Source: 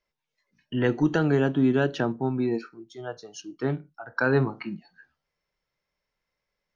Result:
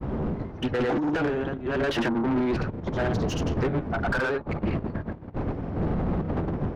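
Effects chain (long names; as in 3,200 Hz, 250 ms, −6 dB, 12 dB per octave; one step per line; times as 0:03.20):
wind on the microphone 110 Hz −22 dBFS
granular cloud, grains 22 per second
compressor whose output falls as the input rises −27 dBFS, ratio −0.5
mid-hump overdrive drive 29 dB, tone 1,400 Hz, clips at −13 dBFS
highs frequency-modulated by the lows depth 0.21 ms
level −3.5 dB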